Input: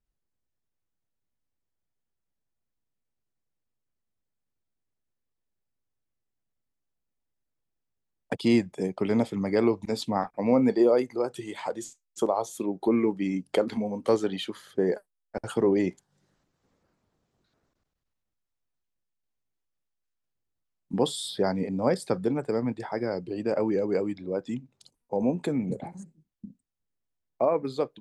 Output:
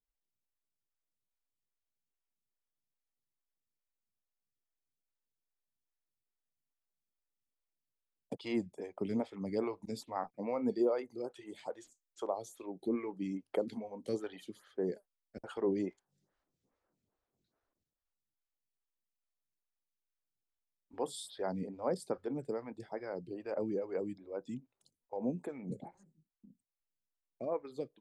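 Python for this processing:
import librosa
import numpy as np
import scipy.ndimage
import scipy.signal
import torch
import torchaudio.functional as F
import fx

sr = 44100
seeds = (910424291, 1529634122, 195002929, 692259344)

y = fx.stagger_phaser(x, sr, hz=2.4)
y = y * librosa.db_to_amplitude(-8.5)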